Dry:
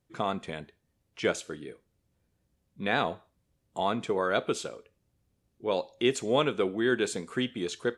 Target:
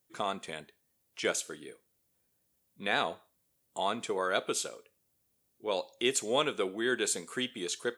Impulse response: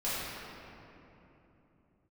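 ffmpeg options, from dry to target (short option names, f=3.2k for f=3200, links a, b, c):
-af "aemphasis=mode=production:type=bsi,volume=-2.5dB"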